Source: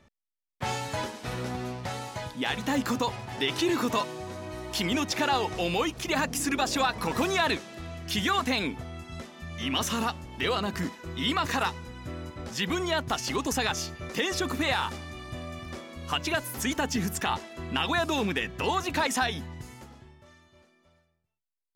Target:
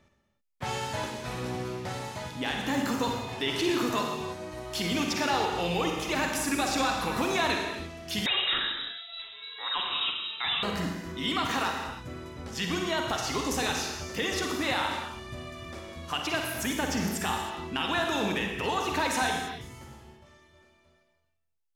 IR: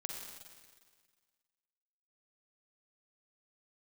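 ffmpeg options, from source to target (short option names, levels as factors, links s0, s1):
-filter_complex "[1:a]atrim=start_sample=2205,afade=t=out:st=0.38:d=0.01,atrim=end_sample=17199[s0];[0:a][s0]afir=irnorm=-1:irlink=0,asettb=1/sr,asplit=3[s1][s2][s3];[s1]atrim=end=8.264[s4];[s2]atrim=start=8.26:end=10.63,asetpts=PTS-STARTPTS,afade=t=in:d=0.004:c=qsin,afade=t=out:st=2.366:d=0.004:c=qsin,lowpass=f=3400:t=q:w=0.5098,lowpass=f=3400:t=q:w=0.6013,lowpass=f=3400:t=q:w=0.9,lowpass=f=3400:t=q:w=2.563,afreqshift=-4000[s5];[s3]atrim=start=10.626[s6];[s4][s5]acrossfade=d=0.004:c1=hsin:c2=qsin[s7];[s7][s6]acrossfade=d=0.004:c1=qsin:c2=hsin"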